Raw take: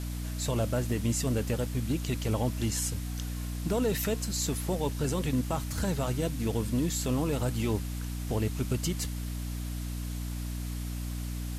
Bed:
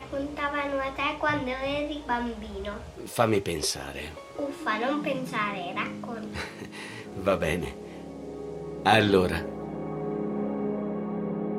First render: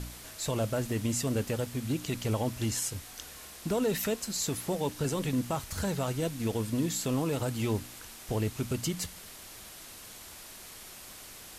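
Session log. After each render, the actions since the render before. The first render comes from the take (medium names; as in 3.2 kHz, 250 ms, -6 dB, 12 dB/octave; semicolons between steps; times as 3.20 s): de-hum 60 Hz, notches 5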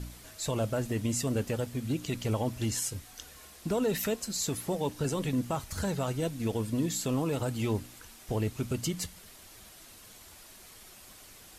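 noise reduction 6 dB, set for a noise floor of -48 dBFS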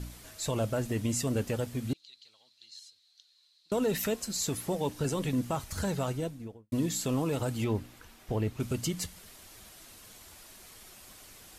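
1.93–3.72 s: band-pass filter 4.1 kHz, Q 11; 6.00–6.72 s: studio fade out; 7.64–8.60 s: peaking EQ 9.1 kHz -9 dB 2 oct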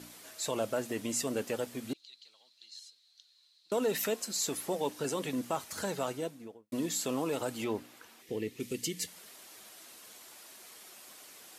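8.21–9.07 s: time-frequency box 530–1700 Hz -14 dB; high-pass 290 Hz 12 dB/octave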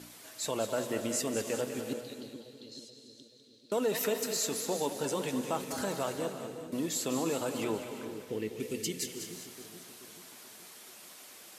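on a send: two-band feedback delay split 490 Hz, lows 431 ms, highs 200 ms, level -9 dB; on the sum: gated-style reverb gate 390 ms rising, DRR 10 dB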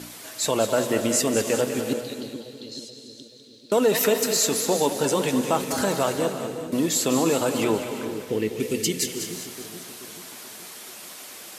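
trim +10.5 dB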